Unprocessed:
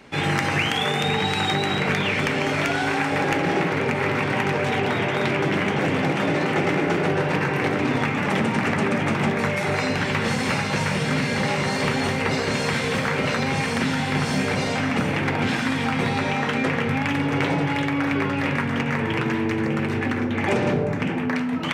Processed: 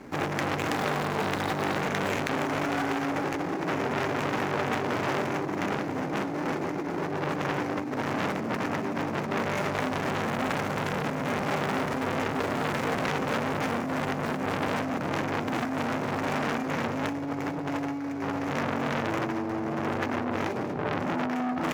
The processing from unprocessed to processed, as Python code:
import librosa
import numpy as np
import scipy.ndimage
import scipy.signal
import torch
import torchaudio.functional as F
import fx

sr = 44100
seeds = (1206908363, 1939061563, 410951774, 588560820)

y = scipy.ndimage.median_filter(x, 15, mode='constant')
y = fx.peak_eq(y, sr, hz=300.0, db=7.0, octaves=0.5)
y = fx.over_compress(y, sr, threshold_db=-23.0, ratio=-0.5)
y = fx.transformer_sat(y, sr, knee_hz=2000.0)